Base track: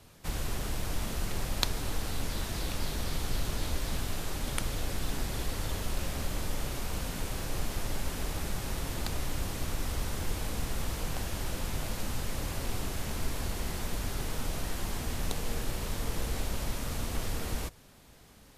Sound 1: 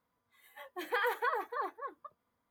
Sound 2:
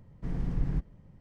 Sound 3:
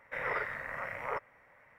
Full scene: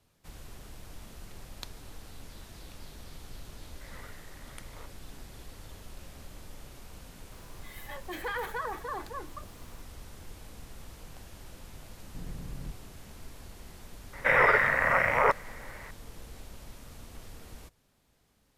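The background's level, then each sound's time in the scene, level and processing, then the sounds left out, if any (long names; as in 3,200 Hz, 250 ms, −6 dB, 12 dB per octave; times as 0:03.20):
base track −13.5 dB
0:03.68: mix in 3 −17 dB
0:07.32: mix in 1 −3.5 dB + envelope flattener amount 50%
0:11.92: mix in 2 −3 dB + downward compressor 3 to 1, threshold −35 dBFS
0:14.13: mix in 3 −10.5 dB + boost into a limiter +25 dB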